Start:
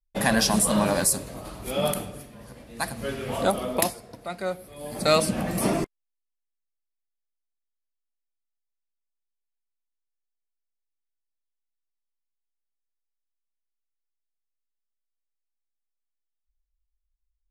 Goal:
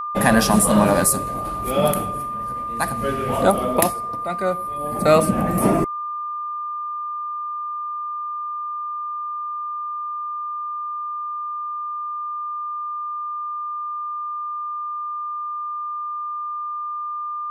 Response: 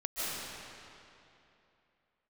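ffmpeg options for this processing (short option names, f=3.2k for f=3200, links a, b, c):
-af "asetnsamples=n=441:p=0,asendcmd='4.77 equalizer g -15',equalizer=f=4.8k:t=o:w=1.7:g=-8.5,aeval=exprs='val(0)+0.0251*sin(2*PI*1200*n/s)':c=same,volume=7dB"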